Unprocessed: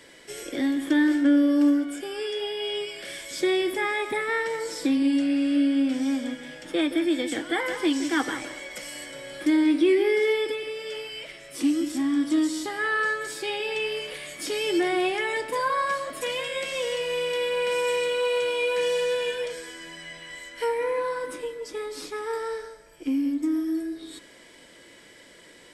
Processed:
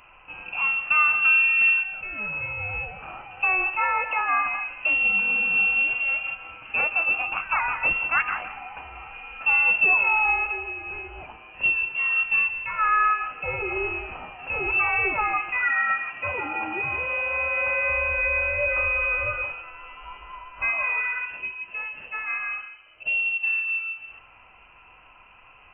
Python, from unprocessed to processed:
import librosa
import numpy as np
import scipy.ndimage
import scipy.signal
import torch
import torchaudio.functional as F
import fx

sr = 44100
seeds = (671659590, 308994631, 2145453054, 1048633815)

y = fx.dynamic_eq(x, sr, hz=1800.0, q=1.5, threshold_db=-41.0, ratio=4.0, max_db=6)
y = fx.freq_invert(y, sr, carrier_hz=3000)
y = fx.highpass(y, sr, hz=84.0, slope=24, at=(15.8, 17.9))